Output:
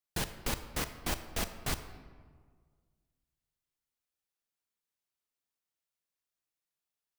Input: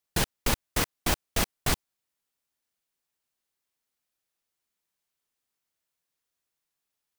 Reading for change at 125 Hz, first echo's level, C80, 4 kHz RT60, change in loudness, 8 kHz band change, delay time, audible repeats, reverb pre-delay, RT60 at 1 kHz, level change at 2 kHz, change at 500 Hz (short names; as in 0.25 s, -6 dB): -7.5 dB, none, 12.5 dB, 0.95 s, -7.5 dB, -8.0 dB, none, none, 25 ms, 1.6 s, -7.5 dB, -7.5 dB